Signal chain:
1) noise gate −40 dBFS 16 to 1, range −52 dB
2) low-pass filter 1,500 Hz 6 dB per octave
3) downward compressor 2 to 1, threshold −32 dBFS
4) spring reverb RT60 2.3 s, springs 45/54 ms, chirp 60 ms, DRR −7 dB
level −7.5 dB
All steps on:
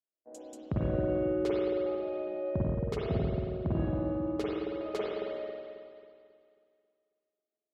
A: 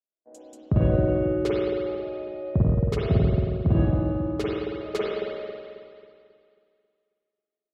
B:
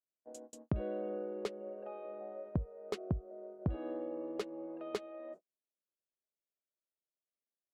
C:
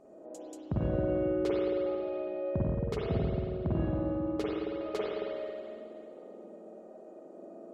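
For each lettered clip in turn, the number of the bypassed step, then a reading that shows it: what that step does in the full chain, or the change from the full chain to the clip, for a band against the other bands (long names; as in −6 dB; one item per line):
3, average gain reduction 3.5 dB
4, change in momentary loudness spread −5 LU
1, change in momentary loudness spread +2 LU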